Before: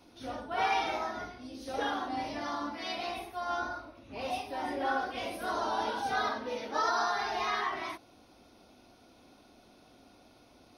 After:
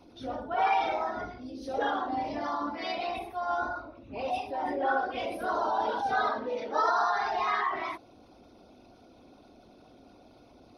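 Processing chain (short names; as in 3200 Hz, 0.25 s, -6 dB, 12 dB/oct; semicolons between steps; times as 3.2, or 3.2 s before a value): formant sharpening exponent 1.5; gain +3.5 dB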